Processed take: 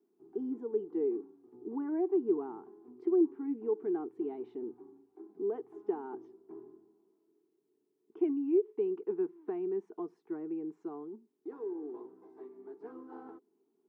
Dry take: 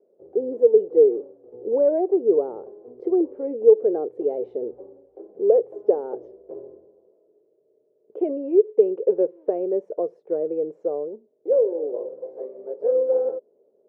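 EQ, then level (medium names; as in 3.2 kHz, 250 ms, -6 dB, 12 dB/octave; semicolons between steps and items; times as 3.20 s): high-pass 220 Hz 12 dB/octave; Chebyshev band-stop 300–1000 Hz, order 2; 0.0 dB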